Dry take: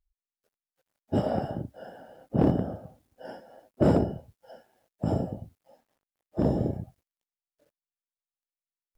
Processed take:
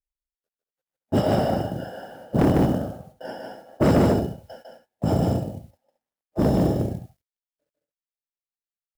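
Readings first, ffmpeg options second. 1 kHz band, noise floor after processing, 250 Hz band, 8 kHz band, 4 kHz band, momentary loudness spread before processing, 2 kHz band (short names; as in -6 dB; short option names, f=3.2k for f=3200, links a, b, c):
+7.5 dB, under -85 dBFS, +6.0 dB, n/a, +12.0 dB, 21 LU, +10.5 dB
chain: -filter_complex "[0:a]agate=range=-20dB:threshold=-52dB:ratio=16:detection=peak,asplit=2[a][b];[b]aecho=0:1:151.6|221.6:0.708|0.282[c];[a][c]amix=inputs=2:normalize=0,asoftclip=type=tanh:threshold=-18.5dB,acrusher=bits=9:mode=log:mix=0:aa=0.000001,adynamicequalizer=threshold=0.00562:dfrequency=1800:dqfactor=0.7:tfrequency=1800:tqfactor=0.7:attack=5:release=100:ratio=0.375:range=3:mode=boostabove:tftype=highshelf,volume=6.5dB"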